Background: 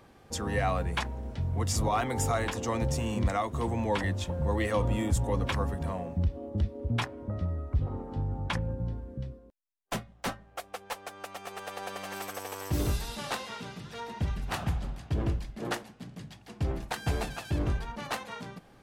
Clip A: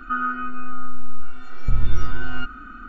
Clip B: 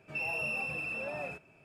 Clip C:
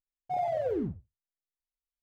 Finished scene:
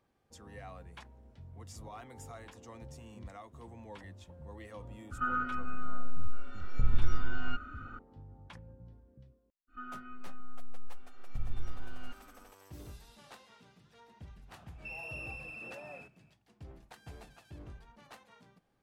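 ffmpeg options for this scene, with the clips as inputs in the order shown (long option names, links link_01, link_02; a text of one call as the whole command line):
ffmpeg -i bed.wav -i cue0.wav -i cue1.wav -filter_complex "[1:a]asplit=2[link_01][link_02];[0:a]volume=-19.5dB[link_03];[link_02]equalizer=frequency=1400:width=4.2:gain=-7.5[link_04];[link_01]atrim=end=2.88,asetpts=PTS-STARTPTS,volume=-8dB,afade=type=in:duration=0.004:curve=hsin,afade=type=out:start_time=2.876:duration=0.004:curve=hsin,adelay=5110[link_05];[link_04]atrim=end=2.88,asetpts=PTS-STARTPTS,volume=-16.5dB,afade=type=in:duration=0.1,afade=type=out:start_time=2.78:duration=0.1,adelay=9670[link_06];[2:a]atrim=end=1.64,asetpts=PTS-STARTPTS,volume=-9dB,afade=type=in:duration=0.004:curve=hsin,afade=type=out:start_time=1.636:duration=0.004:curve=hsin,adelay=14700[link_07];[link_03][link_05][link_06][link_07]amix=inputs=4:normalize=0" out.wav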